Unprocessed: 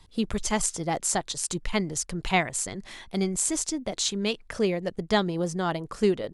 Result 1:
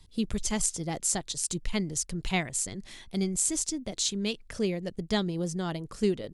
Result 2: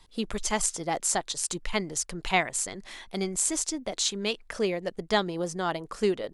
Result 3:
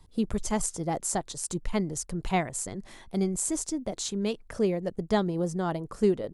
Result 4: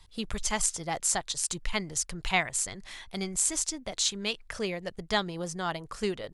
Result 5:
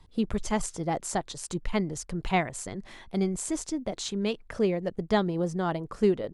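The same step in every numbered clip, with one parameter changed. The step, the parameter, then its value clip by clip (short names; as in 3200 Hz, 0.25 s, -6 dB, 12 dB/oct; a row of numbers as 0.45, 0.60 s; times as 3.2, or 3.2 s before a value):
bell, frequency: 1000, 91, 3000, 280, 16000 Hz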